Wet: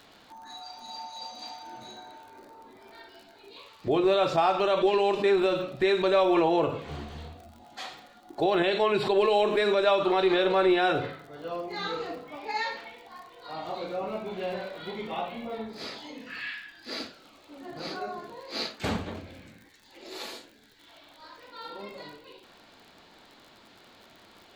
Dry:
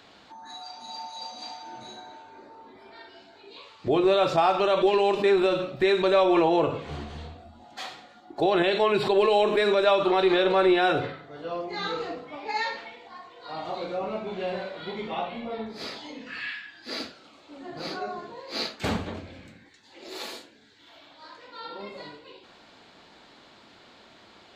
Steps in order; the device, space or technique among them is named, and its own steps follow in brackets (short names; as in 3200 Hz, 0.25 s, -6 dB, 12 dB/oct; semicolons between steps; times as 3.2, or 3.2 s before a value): vinyl LP (crackle 58/s -41 dBFS; pink noise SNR 43 dB); gain -2 dB